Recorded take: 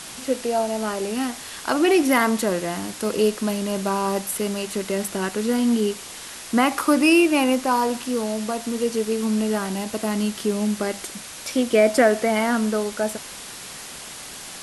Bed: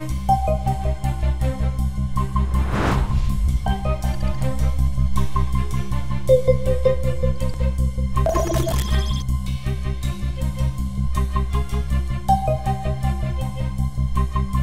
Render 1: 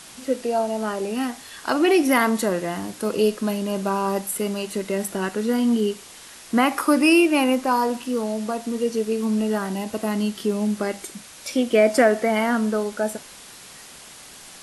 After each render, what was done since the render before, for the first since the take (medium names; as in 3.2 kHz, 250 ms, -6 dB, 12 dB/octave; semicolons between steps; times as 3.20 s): noise print and reduce 6 dB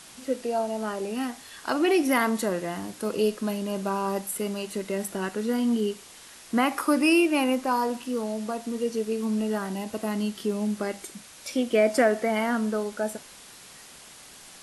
trim -4.5 dB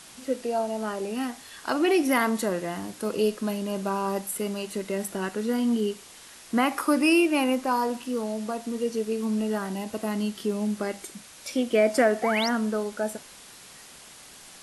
12.22–12.49 s: painted sound rise 670–6200 Hz -30 dBFS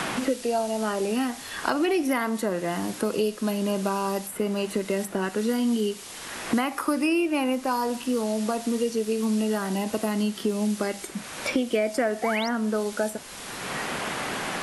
three bands compressed up and down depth 100%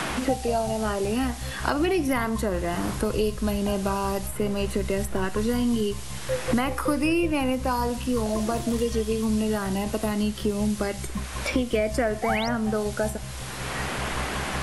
add bed -13.5 dB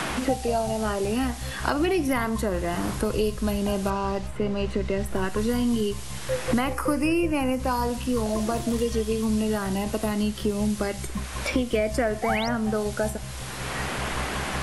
3.90–5.06 s: distance through air 100 m; 6.73–7.60 s: peaking EQ 3.7 kHz -11.5 dB 0.35 oct